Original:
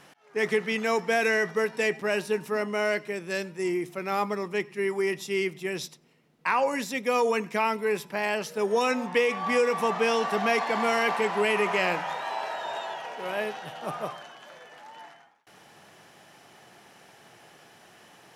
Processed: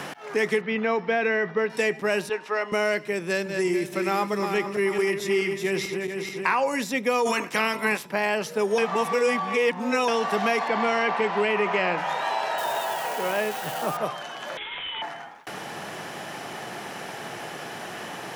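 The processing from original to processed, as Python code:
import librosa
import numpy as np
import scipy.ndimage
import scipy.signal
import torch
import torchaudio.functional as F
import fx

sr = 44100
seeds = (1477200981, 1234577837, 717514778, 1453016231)

y = fx.air_absorb(x, sr, metres=310.0, at=(0.6, 1.69), fade=0.02)
y = fx.bandpass_edges(y, sr, low_hz=590.0, high_hz=3900.0, at=(2.29, 2.72))
y = fx.reverse_delay_fb(y, sr, ms=218, feedback_pct=63, wet_db=-8.0, at=(3.24, 6.55))
y = fx.spec_clip(y, sr, under_db=19, at=(7.25, 8.05), fade=0.02)
y = fx.bessel_lowpass(y, sr, hz=4000.0, order=2, at=(10.68, 11.98))
y = fx.crossing_spikes(y, sr, level_db=-31.5, at=(12.58, 13.97))
y = fx.freq_invert(y, sr, carrier_hz=3900, at=(14.57, 15.02))
y = fx.edit(y, sr, fx.reverse_span(start_s=8.78, length_s=1.3), tone=tone)
y = fx.band_squash(y, sr, depth_pct=70)
y = y * 10.0 ** (2.0 / 20.0)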